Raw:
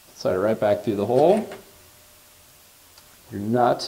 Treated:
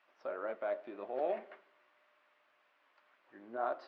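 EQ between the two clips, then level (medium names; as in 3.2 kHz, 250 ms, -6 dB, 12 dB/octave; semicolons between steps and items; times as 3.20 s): cabinet simulation 220–2000 Hz, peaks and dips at 300 Hz +5 dB, 590 Hz +5 dB, 1.1 kHz +3 dB; differentiator; +1.0 dB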